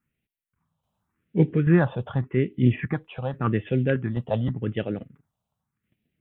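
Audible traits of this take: tremolo saw down 1.2 Hz, depth 50%; phasing stages 4, 0.87 Hz, lowest notch 320–1100 Hz

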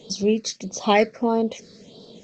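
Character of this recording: phasing stages 6, 1.6 Hz, lowest notch 800–2100 Hz; G.722

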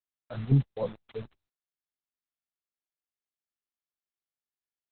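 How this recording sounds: a buzz of ramps at a fixed pitch in blocks of 8 samples; chopped level 3.9 Hz, depth 60%, duty 75%; a quantiser's noise floor 8-bit, dither none; Opus

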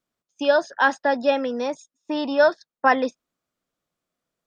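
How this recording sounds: noise floor -92 dBFS; spectral tilt 0.0 dB/octave

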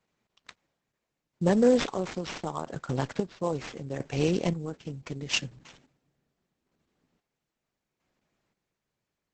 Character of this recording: aliases and images of a low sample rate 8.8 kHz, jitter 20%; chopped level 0.75 Hz, depth 60%, duty 40%; Opus

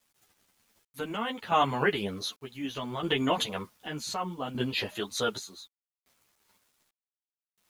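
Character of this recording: chopped level 0.66 Hz, depth 65%, duty 55%; a quantiser's noise floor 10-bit, dither none; a shimmering, thickened sound

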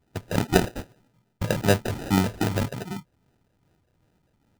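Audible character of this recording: phasing stages 8, 2.5 Hz, lowest notch 300–1500 Hz; aliases and images of a low sample rate 1.1 kHz, jitter 0%

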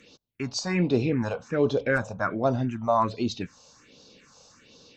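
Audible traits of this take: phasing stages 4, 1.3 Hz, lowest notch 310–2000 Hz

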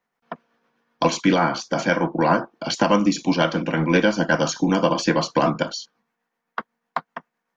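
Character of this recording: tremolo triangle 7.9 Hz, depth 40%

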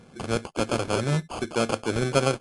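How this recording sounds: aliases and images of a low sample rate 1.9 kHz, jitter 0%; MP3

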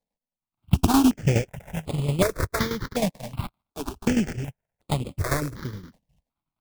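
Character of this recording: a buzz of ramps at a fixed pitch in blocks of 16 samples; tremolo saw down 9.6 Hz, depth 70%; aliases and images of a low sample rate 2.9 kHz, jitter 20%; notches that jump at a steady rate 2.7 Hz 360–5800 Hz

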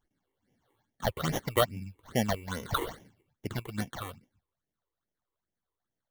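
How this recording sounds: aliases and images of a low sample rate 2.5 kHz, jitter 0%; phasing stages 8, 2.4 Hz, lowest notch 190–1300 Hz

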